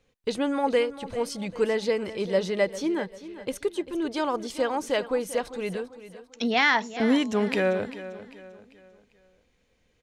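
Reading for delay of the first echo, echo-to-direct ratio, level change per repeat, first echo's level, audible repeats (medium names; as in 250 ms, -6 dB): 395 ms, -14.0 dB, -8.0 dB, -14.5 dB, 3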